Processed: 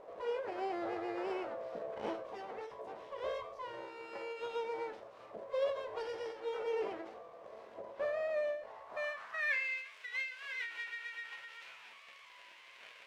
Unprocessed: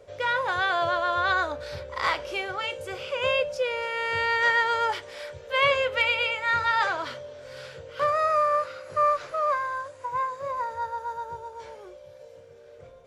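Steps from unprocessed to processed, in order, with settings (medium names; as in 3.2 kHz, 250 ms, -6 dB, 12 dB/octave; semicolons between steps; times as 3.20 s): jump at every zero crossing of -33 dBFS; bass shelf 95 Hz +10.5 dB; full-wave rectifier; band-pass sweep 540 Hz -> 2.5 kHz, 8.67–9.73 s; feedback comb 110 Hz, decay 0.32 s, harmonics all, mix 70%; endings held to a fixed fall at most 100 dB/s; trim +6.5 dB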